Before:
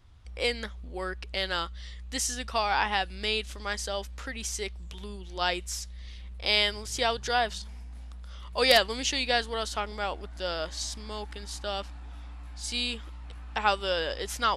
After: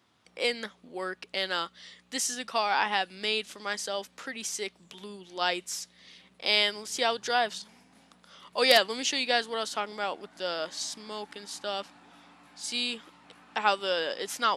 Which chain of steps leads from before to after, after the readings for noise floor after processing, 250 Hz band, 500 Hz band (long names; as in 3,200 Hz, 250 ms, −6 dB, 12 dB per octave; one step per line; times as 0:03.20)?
−64 dBFS, −0.5 dB, 0.0 dB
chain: high-pass filter 180 Hz 24 dB per octave